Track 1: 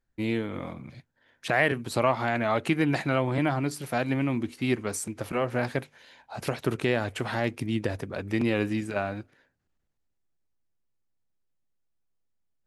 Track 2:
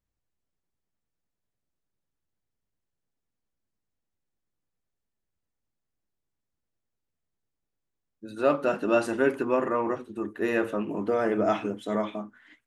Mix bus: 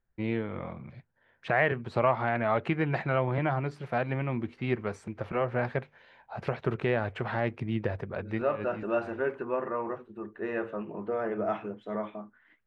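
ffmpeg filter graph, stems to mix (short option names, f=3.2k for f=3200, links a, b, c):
-filter_complex "[0:a]volume=-0.5dB[a];[1:a]volume=-5dB,asplit=2[b][c];[c]apad=whole_len=558662[d];[a][d]sidechaincompress=threshold=-45dB:ratio=5:attack=7.4:release=102[e];[e][b]amix=inputs=2:normalize=0,lowpass=2.1k,equalizer=f=280:t=o:w=0.26:g=-13"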